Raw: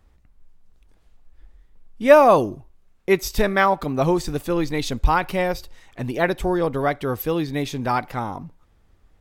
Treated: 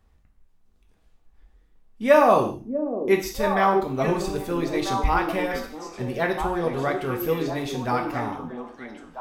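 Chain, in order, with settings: delay with a stepping band-pass 0.646 s, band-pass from 330 Hz, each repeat 1.4 oct, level -2.5 dB; 3.21–3.9 transient shaper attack -8 dB, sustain -2 dB; non-linear reverb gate 0.2 s falling, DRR 2 dB; gain -5 dB

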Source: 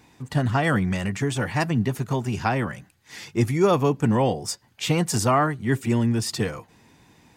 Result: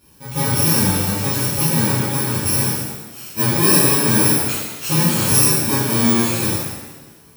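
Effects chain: FFT order left unsorted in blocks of 64 samples; shimmer reverb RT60 1.1 s, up +7 st, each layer -8 dB, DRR -11 dB; gain -5.5 dB

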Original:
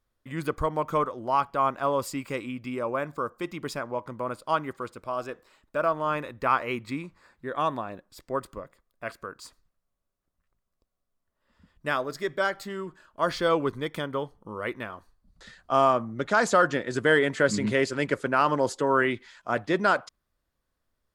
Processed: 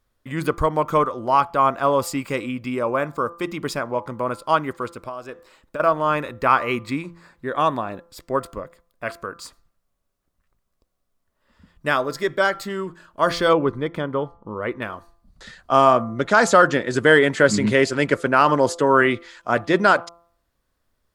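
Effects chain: de-hum 170.1 Hz, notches 8; 4.89–5.8 compressor 12:1, threshold -36 dBFS, peak gain reduction 13 dB; 13.53–14.82 LPF 1400 Hz 6 dB/oct; gain +7 dB

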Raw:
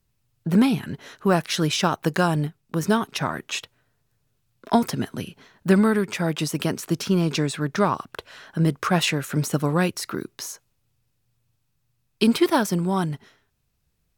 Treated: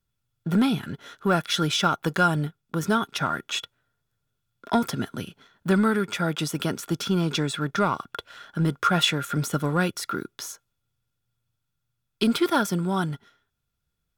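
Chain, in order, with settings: sample leveller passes 1; small resonant body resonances 1400/3400 Hz, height 15 dB, ringing for 45 ms; gain -6 dB

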